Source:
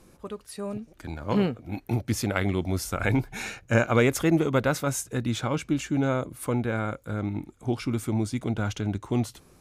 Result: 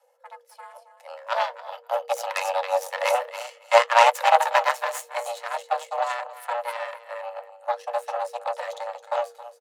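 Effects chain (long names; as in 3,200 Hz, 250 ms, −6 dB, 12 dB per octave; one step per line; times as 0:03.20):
low-shelf EQ 160 Hz +6 dB
comb filter 2.4 ms, depth 48%
repeating echo 271 ms, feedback 25%, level −8.5 dB
harmonic generator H 3 −36 dB, 4 −8 dB, 6 −11 dB, 7 −19 dB, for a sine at −7 dBFS
flanger 0.48 Hz, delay 2.2 ms, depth 9.7 ms, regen −65%
frequency shifter +470 Hz
level +5.5 dB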